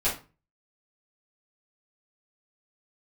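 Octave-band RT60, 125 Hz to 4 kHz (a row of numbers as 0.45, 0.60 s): 0.50, 0.40, 0.30, 0.30, 0.30, 0.25 s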